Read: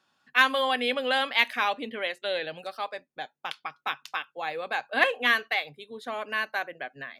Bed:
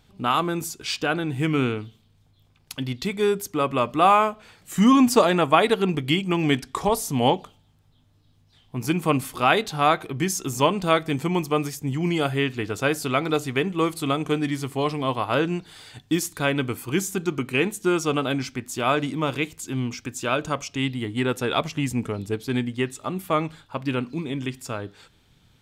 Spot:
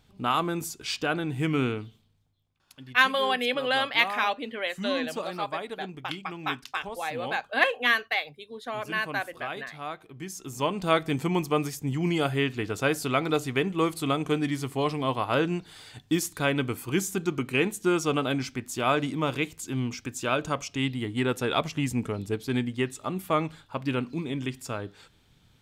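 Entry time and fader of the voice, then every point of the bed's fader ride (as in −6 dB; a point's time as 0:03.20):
2.60 s, 0.0 dB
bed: 0:01.96 −3.5 dB
0:02.45 −17 dB
0:10.05 −17 dB
0:10.97 −2.5 dB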